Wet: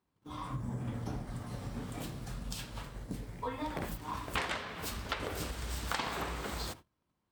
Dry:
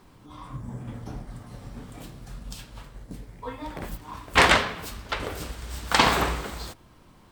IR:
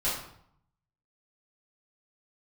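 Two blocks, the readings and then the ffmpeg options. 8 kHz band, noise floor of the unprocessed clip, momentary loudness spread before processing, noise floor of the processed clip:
-9.5 dB, -54 dBFS, 23 LU, -82 dBFS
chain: -af "acompressor=threshold=0.02:ratio=12,agate=range=0.0355:threshold=0.00398:ratio=16:detection=peak,highpass=50,volume=1.19"

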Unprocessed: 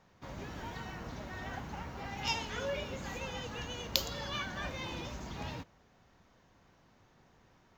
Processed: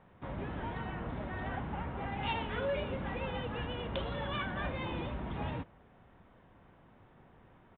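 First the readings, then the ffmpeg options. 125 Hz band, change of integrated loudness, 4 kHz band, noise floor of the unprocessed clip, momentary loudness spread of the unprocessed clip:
+4.5 dB, +1.0 dB, -6.0 dB, -66 dBFS, 10 LU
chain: -af "lowpass=f=1600:p=1,aresample=8000,asoftclip=type=tanh:threshold=0.0251,aresample=44100,volume=1.88"

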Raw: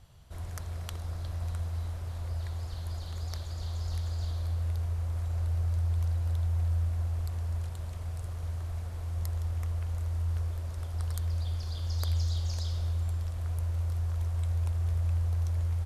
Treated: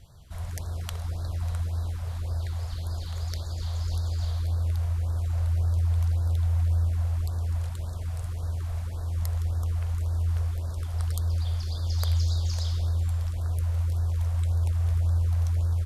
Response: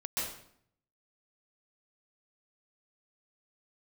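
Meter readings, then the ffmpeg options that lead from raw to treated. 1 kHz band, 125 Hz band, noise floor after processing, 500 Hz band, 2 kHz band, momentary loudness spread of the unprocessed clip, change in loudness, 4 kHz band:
+3.5 dB, +4.5 dB, -34 dBFS, +3.5 dB, +3.0 dB, 8 LU, +4.5 dB, +4.5 dB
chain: -af "afftfilt=real='re*(1-between(b*sr/1024,260*pow(2600/260,0.5+0.5*sin(2*PI*1.8*pts/sr))/1.41,260*pow(2600/260,0.5+0.5*sin(2*PI*1.8*pts/sr))*1.41))':imag='im*(1-between(b*sr/1024,260*pow(2600/260,0.5+0.5*sin(2*PI*1.8*pts/sr))/1.41,260*pow(2600/260,0.5+0.5*sin(2*PI*1.8*pts/sr))*1.41))':win_size=1024:overlap=0.75,volume=1.68"

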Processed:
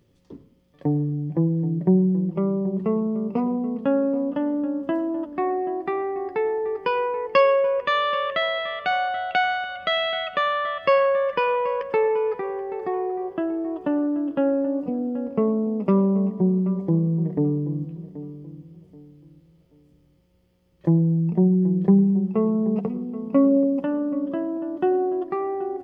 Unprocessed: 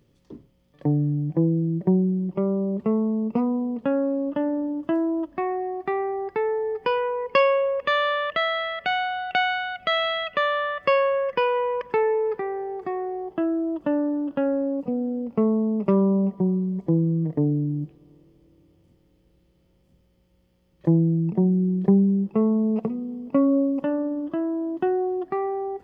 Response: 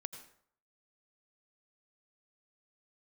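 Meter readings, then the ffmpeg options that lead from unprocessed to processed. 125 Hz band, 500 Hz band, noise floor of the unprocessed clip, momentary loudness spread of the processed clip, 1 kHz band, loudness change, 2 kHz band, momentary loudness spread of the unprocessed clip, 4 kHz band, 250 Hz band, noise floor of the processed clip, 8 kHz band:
+1.0 dB, +1.0 dB, -63 dBFS, 8 LU, +1.5 dB, +1.0 dB, -0.5 dB, 7 LU, 0.0 dB, +1.0 dB, -60 dBFS, no reading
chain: -filter_complex "[0:a]asplit=2[s0][s1];[s1]adelay=780,lowpass=f=2000:p=1,volume=0.2,asplit=2[s2][s3];[s3]adelay=780,lowpass=f=2000:p=1,volume=0.3,asplit=2[s4][s5];[s5]adelay=780,lowpass=f=2000:p=1,volume=0.3[s6];[s0][s2][s4][s6]amix=inputs=4:normalize=0,asplit=2[s7][s8];[1:a]atrim=start_sample=2205,adelay=11[s9];[s8][s9]afir=irnorm=-1:irlink=0,volume=0.473[s10];[s7][s10]amix=inputs=2:normalize=0"

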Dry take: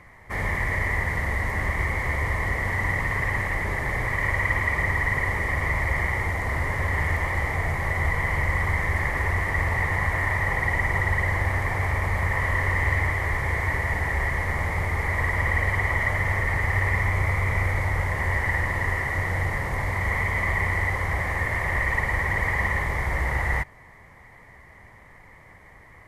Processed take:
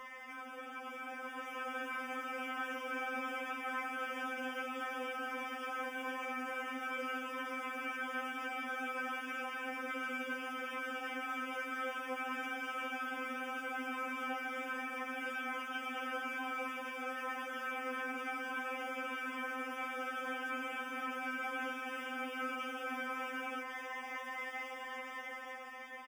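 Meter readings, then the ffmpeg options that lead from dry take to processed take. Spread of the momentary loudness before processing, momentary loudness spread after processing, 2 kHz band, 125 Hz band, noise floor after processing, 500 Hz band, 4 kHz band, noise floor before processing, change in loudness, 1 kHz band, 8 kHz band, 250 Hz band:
3 LU, 4 LU, -15.0 dB, under -40 dB, -47 dBFS, -11.0 dB, -4.0 dB, -50 dBFS, -15.5 dB, -10.0 dB, -13.0 dB, -8.0 dB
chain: -filter_complex "[0:a]acrossover=split=250|990[s0][s1][s2];[s0]asoftclip=type=tanh:threshold=0.0631[s3];[s3][s1][s2]amix=inputs=3:normalize=0,acrusher=bits=7:mix=0:aa=0.000001,afftfilt=real='re*lt(hypot(re,im),0.0501)':imag='im*lt(hypot(re,im),0.0501)':win_size=1024:overlap=0.75,aeval=exprs='val(0)+0.000562*sin(2*PI*2000*n/s)':c=same,acrossover=split=320[s4][s5];[s5]acompressor=threshold=0.00447:ratio=10[s6];[s4][s6]amix=inputs=2:normalize=0,asuperstop=centerf=4100:order=12:qfactor=3.7,acrossover=split=310 2900:gain=0.1 1 0.126[s7][s8][s9];[s7][s8][s9]amix=inputs=3:normalize=0,dynaudnorm=f=400:g=7:m=2.24,highpass=f=74:p=1,asplit=2[s10][s11];[s11]asplit=5[s12][s13][s14][s15][s16];[s12]adelay=125,afreqshift=67,volume=0.282[s17];[s13]adelay=250,afreqshift=134,volume=0.127[s18];[s14]adelay=375,afreqshift=201,volume=0.0569[s19];[s15]adelay=500,afreqshift=268,volume=0.0257[s20];[s16]adelay=625,afreqshift=335,volume=0.0116[s21];[s17][s18][s19][s20][s21]amix=inputs=5:normalize=0[s22];[s10][s22]amix=inputs=2:normalize=0,aeval=exprs='val(0)+0.001*(sin(2*PI*60*n/s)+sin(2*PI*2*60*n/s)/2+sin(2*PI*3*60*n/s)/3+sin(2*PI*4*60*n/s)/4+sin(2*PI*5*60*n/s)/5)':c=same,afftfilt=real='re*3.46*eq(mod(b,12),0)':imag='im*3.46*eq(mod(b,12),0)':win_size=2048:overlap=0.75,volume=2"

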